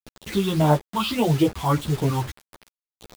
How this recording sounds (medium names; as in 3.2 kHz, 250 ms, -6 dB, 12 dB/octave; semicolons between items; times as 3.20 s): phasing stages 6, 1.7 Hz, lowest notch 510–2200 Hz; a quantiser's noise floor 6-bit, dither none; a shimmering, thickened sound